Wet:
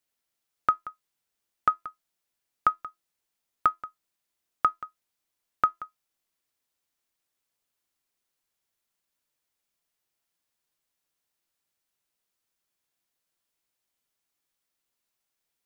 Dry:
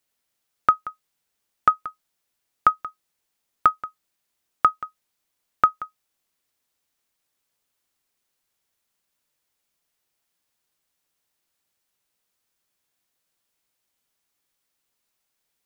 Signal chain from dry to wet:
tuned comb filter 340 Hz, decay 0.19 s, harmonics all, mix 40%
level −1.5 dB

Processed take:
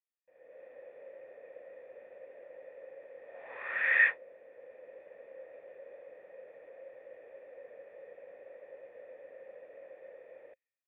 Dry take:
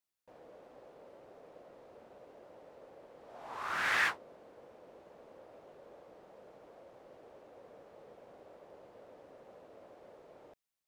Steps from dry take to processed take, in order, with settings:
tilt shelving filter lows −9 dB, about 1,200 Hz
automatic gain control gain up to 16 dB
formant resonators in series e

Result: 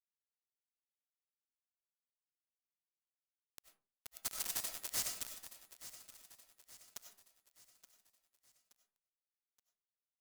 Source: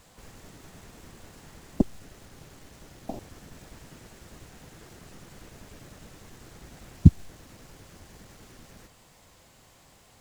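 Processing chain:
source passing by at 0:04.63, 13 m/s, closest 1.9 metres
gate on every frequency bin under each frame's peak −30 dB weak
treble cut that deepens with the level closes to 1,100 Hz, closed at −51.5 dBFS
inverse Chebyshev band-stop filter 330–2,000 Hz, stop band 50 dB
parametric band 3,100 Hz −10.5 dB 2.6 octaves
mid-hump overdrive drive 31 dB, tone 2,000 Hz, clips at −39.5 dBFS
bit reduction 10 bits
sine wavefolder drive 17 dB, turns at −40 dBFS
repeating echo 874 ms, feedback 46%, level −14.5 dB
on a send at −5 dB: convolution reverb RT60 0.35 s, pre-delay 55 ms
on the sum: level +15 dB

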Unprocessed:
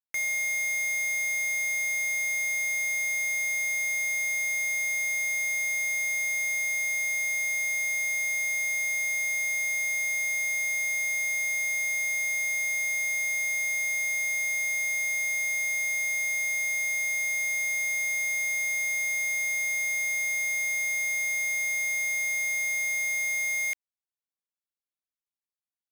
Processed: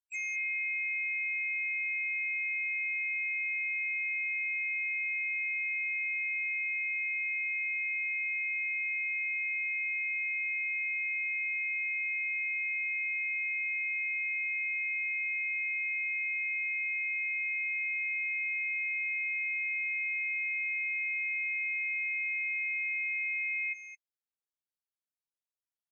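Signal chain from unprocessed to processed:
on a send: single-tap delay 216 ms −11.5 dB
on the sum: pitch-shifted copies added +3 semitones −1 dB
gate on every frequency bin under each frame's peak −10 dB strong
level −8.5 dB

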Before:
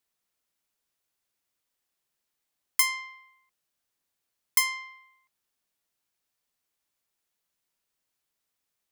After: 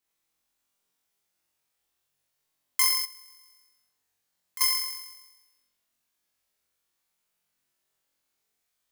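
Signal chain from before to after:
on a send: flutter between parallel walls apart 3.8 metres, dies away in 1.1 s
0:03.05–0:04.61: on the sum: downward compressor 2 to 1, threshold −51 dBFS, peak gain reduction 18.5 dB
level −3 dB

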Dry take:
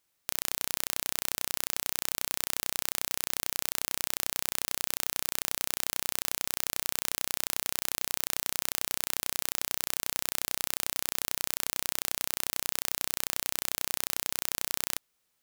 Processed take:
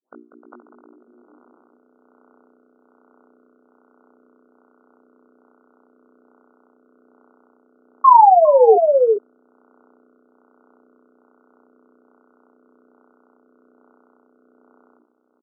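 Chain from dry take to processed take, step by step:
turntable start at the beginning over 1.34 s
mains-hum notches 60/120/180/240/300/360/420 Hz
brickwall limiter −12.5 dBFS, peak gain reduction 10.5 dB
automatic gain control gain up to 5.5 dB
hard clipping −23.5 dBFS, distortion −5 dB
sound drawn into the spectrogram fall, 0:08.04–0:08.76, 410–1,100 Hz −16 dBFS
linear-phase brick-wall band-pass 210–1,500 Hz
double-tracking delay 20 ms −5.5 dB
on a send: single-tap delay 405 ms −6.5 dB
on the sum: rotating-speaker cabinet horn 1.2 Hz
level +7.5 dB

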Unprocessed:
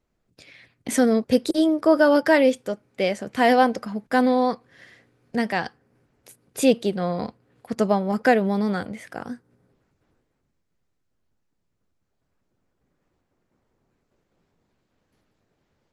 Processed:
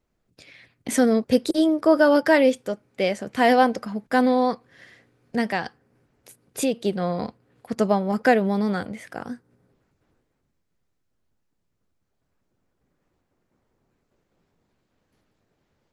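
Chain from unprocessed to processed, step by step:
0:05.55–0:06.85: downward compressor 2.5 to 1, threshold −22 dBFS, peak gain reduction 7.5 dB

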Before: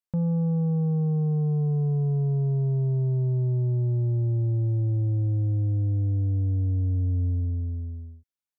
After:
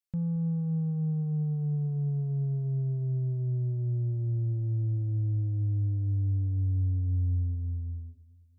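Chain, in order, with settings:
octave-band graphic EQ 125/250/500/1,000 Hz −4/−4/−11/−12 dB
on a send: feedback echo with a low-pass in the loop 222 ms, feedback 51%, level −19 dB

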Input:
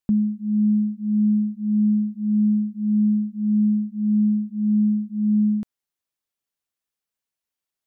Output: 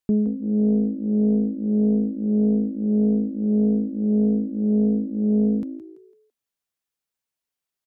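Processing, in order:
echo with shifted repeats 167 ms, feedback 35%, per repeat +55 Hz, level −12.5 dB
highs frequency-modulated by the lows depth 0.47 ms

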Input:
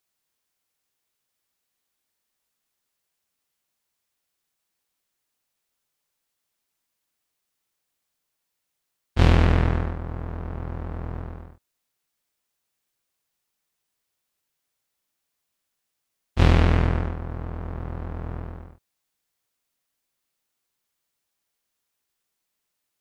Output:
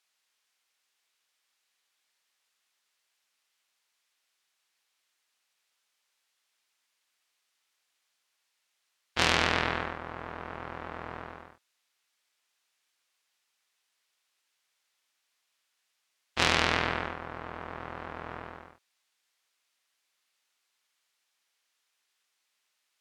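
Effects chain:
resonant band-pass 2,700 Hz, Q 0.54
saturating transformer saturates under 3,200 Hz
level +7 dB

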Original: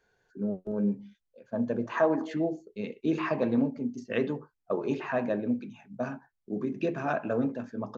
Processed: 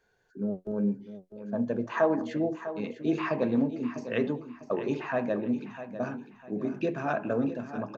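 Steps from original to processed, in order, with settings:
repeating echo 650 ms, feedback 32%, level −12 dB

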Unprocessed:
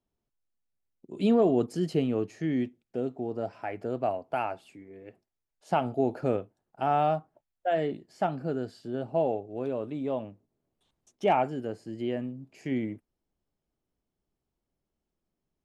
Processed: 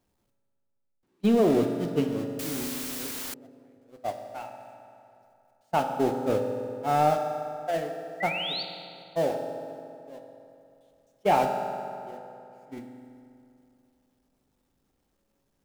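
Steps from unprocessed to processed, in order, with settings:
converter with a step at zero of −29.5 dBFS
noise gate −23 dBFS, range −39 dB
0:08.20–0:08.63: sound drawn into the spectrogram rise 1,900–4,700 Hz −33 dBFS
convolution reverb RT60 2.7 s, pre-delay 3 ms, DRR 3.5 dB
0:02.39–0:03.34: bit-depth reduction 6 bits, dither triangular

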